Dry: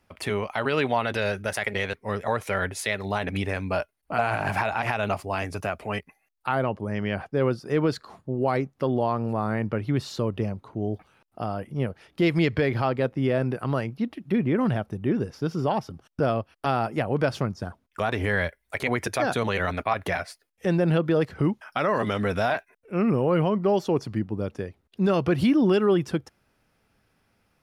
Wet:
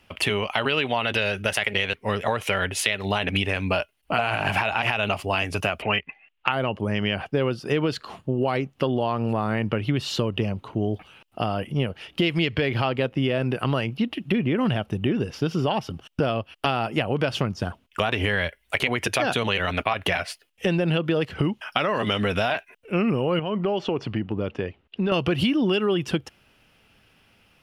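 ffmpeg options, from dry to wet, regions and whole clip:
-filter_complex "[0:a]asettb=1/sr,asplit=3[s0][s1][s2];[s0]atrim=end=5.824[s3];[s1]atrim=start=5.82:end=6.52,asetpts=PTS-STARTPTS,afade=t=in:d=0.004:c=qsin,afade=t=out:st=0.696:d=0.004:c=qsin,lowpass=f=2700:w=0.5412,lowpass=f=2700:w=1.3066,highshelf=f=2000:g=10.5[s4];[s2]atrim=start=6.516[s5];[s3][s4]acrossfade=d=0.004:c1=hsin:c2=qsin[s6];[s6][s5]acrossfade=d=0.004:c1=qsin:c2=hsin,asettb=1/sr,asplit=3[s7][s8][s9];[s7]atrim=end=23.394[s10];[s8]atrim=start=23.39:end=25.12,asetpts=PTS-STARTPTS,afade=t=in:d=0.004:c=qsin,afade=t=out:st=1.726:d=0.004:c=qsin,lowpass=6300,bass=f=250:g=-3,treble=f=4000:g=-11,acompressor=threshold=0.0447:ratio=3:attack=3.2:release=140:knee=1:detection=peak[s11];[s9]atrim=start=25.116[s12];[s10][s11]acrossfade=d=0.004:c1=hsin:c2=qsin[s13];[s13][s12]acrossfade=d=0.004:c1=qsin:c2=hsin,equalizer=f=2900:t=o:w=0.51:g=13.5,acompressor=threshold=0.0501:ratio=6,volume=2.11"

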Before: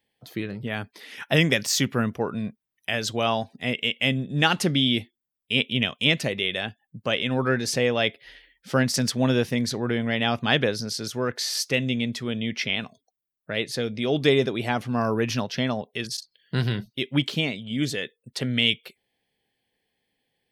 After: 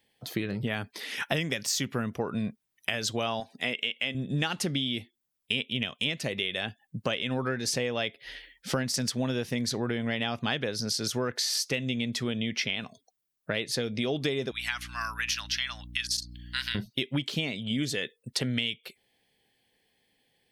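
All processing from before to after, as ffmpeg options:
-filter_complex "[0:a]asettb=1/sr,asplit=3[s0][s1][s2];[s0]atrim=end=3.404[s3];[s1]atrim=start=3.4:end=4.15,asetpts=PTS-STARTPTS,afade=t=in:d=0.004:c=qsin,afade=t=out:st=0.746:d=0.004:c=qsin,highpass=f=410:p=1,acrossover=split=5600[s4][s5];[s5]acompressor=threshold=0.00224:ratio=4:attack=1:release=60[s6];[s4][s6]amix=inputs=2:normalize=0[s7];[s2]atrim=start=4.146[s8];[s3][s7]acrossfade=d=0.004:c1=hsin:c2=qsin[s9];[s9][s8]acrossfade=d=0.004:c1=qsin:c2=hsin,asettb=1/sr,asplit=3[s10][s11][s12];[s10]atrim=end=14.514[s13];[s11]atrim=start=14.51:end=16.75,asetpts=PTS-STARTPTS,afade=t=in:d=0.004:c=qsin,afade=t=out:st=2.236:d=0.004:c=qsin,highpass=f=1400:w=0.5412,highpass=f=1400:w=1.3066,aeval=exprs='val(0)+0.00447*(sin(2*PI*60*n/s)+sin(2*PI*2*60*n/s)/2+sin(2*PI*3*60*n/s)/3+sin(2*PI*4*60*n/s)/4+sin(2*PI*5*60*n/s)/5)':c=same[s14];[s12]atrim=start=16.746[s15];[s13][s14]acrossfade=d=0.004:c1=hsin:c2=qsin[s16];[s16][s15]acrossfade=d=0.004:c1=qsin:c2=hsin,equalizer=f=7200:w=0.46:g=3.5,acompressor=threshold=0.0316:ratio=10,volume=1.58"

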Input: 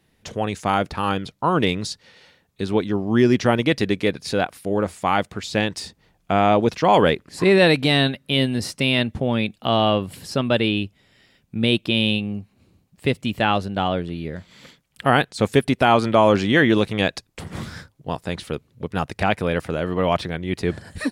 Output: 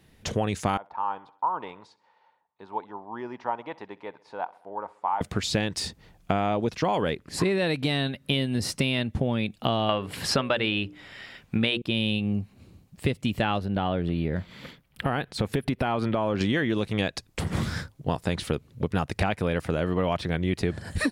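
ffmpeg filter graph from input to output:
-filter_complex "[0:a]asettb=1/sr,asplit=3[s0][s1][s2];[s0]atrim=end=0.774[s3];[s1]atrim=start=0.77:end=5.21,asetpts=PTS-STARTPTS,afade=t=in:d=0.004:c=qsin,afade=t=out:st=4.436:d=0.004:c=qsin,bandpass=f=920:t=q:w=7.4,aecho=1:1:65|130|195|260:0.075|0.0442|0.0261|0.0154,atrim=end_sample=195804[s4];[s2]atrim=start=5.206[s5];[s3][s4]acrossfade=d=0.004:c1=hsin:c2=qsin[s6];[s6][s5]acrossfade=d=0.004:c1=qsin:c2=hsin,asettb=1/sr,asplit=3[s7][s8][s9];[s7]atrim=end=9.894[s10];[s8]atrim=start=9.89:end=11.82,asetpts=PTS-STARTPTS,afade=t=in:d=0.004:c=qsin,afade=t=out:st=1.926:d=0.004:c=qsin,equalizer=f=1500:w=0.36:g=12,bandreject=f=60:t=h:w=6,bandreject=f=120:t=h:w=6,bandreject=f=180:t=h:w=6,bandreject=f=240:t=h:w=6,bandreject=f=300:t=h:w=6,bandreject=f=360:t=h:w=6,bandreject=f=420:t=h:w=6,bandreject=f=480:t=h:w=6,bandreject=f=540:t=h:w=6[s11];[s9]atrim=start=11.816[s12];[s10][s11]acrossfade=d=0.004:c1=hsin:c2=qsin[s13];[s13][s12]acrossfade=d=0.004:c1=qsin:c2=hsin,asettb=1/sr,asplit=3[s14][s15][s16];[s14]atrim=end=13.594[s17];[s15]atrim=start=13.59:end=16.41,asetpts=PTS-STARTPTS,afade=t=in:d=0.004:c=qsin,afade=t=out:st=2.816:d=0.004:c=qsin,equalizer=f=7200:t=o:w=1.2:g=-11,acompressor=threshold=0.0562:ratio=2.5:attack=3.2:release=140:knee=1:detection=peak[s18];[s16]atrim=start=16.406[s19];[s17][s18]acrossfade=d=0.004:c1=hsin:c2=qsin[s20];[s20][s19]acrossfade=d=0.004:c1=qsin:c2=hsin,lowshelf=f=140:g=5,acompressor=threshold=0.0562:ratio=12,volume=1.5"

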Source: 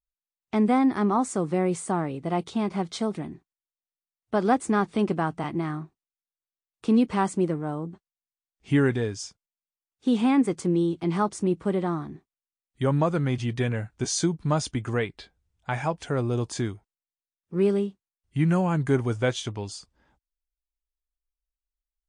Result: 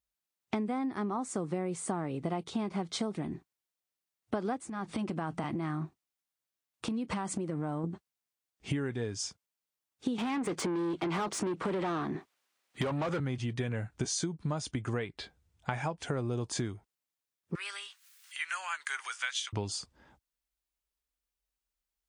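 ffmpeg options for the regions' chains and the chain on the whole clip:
-filter_complex "[0:a]asettb=1/sr,asplit=3[s0][s1][s2];[s0]atrim=end=4.594[s3];[s1]atrim=start=4.59:end=7.84,asetpts=PTS-STARTPTS,afade=t=in:d=0.004:c=qsin,afade=t=out:st=3.246:d=0.004:c=qsin,bandreject=f=420:w=6.2,acompressor=threshold=0.0224:ratio=12:attack=3.2:release=140:knee=1:detection=peak[s4];[s2]atrim=start=7.836[s5];[s3][s4]acrossfade=d=0.004:c1=hsin:c2=qsin[s6];[s6][s5]acrossfade=d=0.004:c1=qsin:c2=hsin,asettb=1/sr,asplit=3[s7][s8][s9];[s7]atrim=end=10.184[s10];[s8]atrim=start=10.18:end=13.2,asetpts=PTS-STARTPTS,afade=t=in:d=0.004:c=qsin,afade=t=out:st=3.016:d=0.004:c=qsin,acompressor=threshold=0.0631:ratio=3:attack=3.2:release=140:knee=1:detection=peak,highpass=f=47:w=0.5412,highpass=f=47:w=1.3066,asplit=2[s11][s12];[s12]highpass=f=720:p=1,volume=17.8,asoftclip=type=tanh:threshold=0.158[s13];[s11][s13]amix=inputs=2:normalize=0,lowpass=f=2700:p=1,volume=0.501[s14];[s9]atrim=start=13.196[s15];[s10][s14]acrossfade=d=0.004:c1=hsin:c2=qsin[s16];[s16][s15]acrossfade=d=0.004:c1=qsin:c2=hsin,asettb=1/sr,asplit=3[s17][s18][s19];[s17]atrim=end=17.554[s20];[s18]atrim=start=17.55:end=19.53,asetpts=PTS-STARTPTS,afade=t=in:d=0.004:c=qsin,afade=t=out:st=1.976:d=0.004:c=qsin,highpass=f=1400:w=0.5412,highpass=f=1400:w=1.3066,acompressor=mode=upward:threshold=0.01:ratio=2.5:attack=3.2:release=140:knee=2.83:detection=peak[s21];[s19]atrim=start=19.526[s22];[s20][s21]acrossfade=d=0.004:c1=hsin:c2=qsin[s23];[s23][s22]acrossfade=d=0.004:c1=qsin:c2=hsin,acompressor=threshold=0.0178:ratio=16,highpass=60,volume=1.78"

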